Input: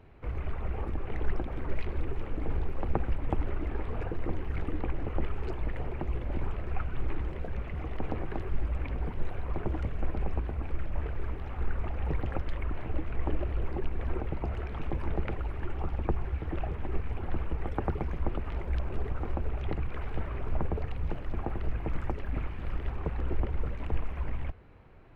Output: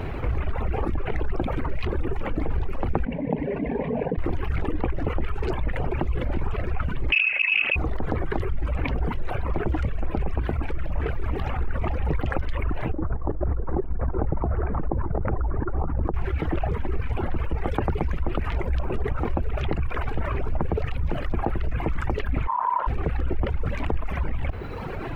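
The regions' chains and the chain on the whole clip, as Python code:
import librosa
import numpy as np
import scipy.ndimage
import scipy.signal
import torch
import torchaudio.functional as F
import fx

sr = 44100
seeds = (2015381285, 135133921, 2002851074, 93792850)

y = fx.chain(x, sr, fx.cvsd(bps=64000),
    fx.cabinet(low_hz=120.0, low_slope=12, high_hz=2200.0, hz=(160.0, 260.0, 390.0, 740.0, 1300.0), db=(5, 5, 8, -4, -3)),
    fx.fixed_phaser(hz=350.0, stages=6), at=(3.05, 4.18))
y = fx.chain(y, sr, fx.low_shelf(hz=450.0, db=4.5),
    fx.freq_invert(carrier_hz=2600),
    fx.doppler_dist(depth_ms=0.46), at=(7.12, 7.76))
y = fx.chain(y, sr, fx.lowpass(hz=1400.0, slope=24),
    fx.over_compress(threshold_db=-32.0, ratio=-1.0), at=(12.92, 16.14))
y = fx.chain(y, sr, fx.lowpass(hz=1000.0, slope=12),
    fx.ring_mod(carrier_hz=980.0), at=(22.47, 22.87))
y = fx.dereverb_blind(y, sr, rt60_s=1.1)
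y = fx.env_flatten(y, sr, amount_pct=70)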